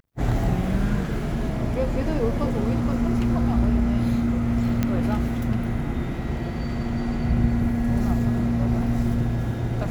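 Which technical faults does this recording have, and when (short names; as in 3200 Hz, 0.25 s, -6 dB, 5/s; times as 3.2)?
4.83 pop -10 dBFS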